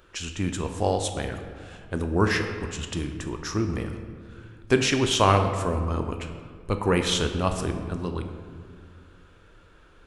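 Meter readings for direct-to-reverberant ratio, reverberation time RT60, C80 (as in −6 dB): 5.5 dB, 2.0 s, 8.5 dB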